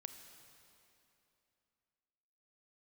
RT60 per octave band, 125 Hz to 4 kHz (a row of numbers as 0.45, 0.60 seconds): 3.0, 3.1, 2.9, 2.9, 2.7, 2.5 seconds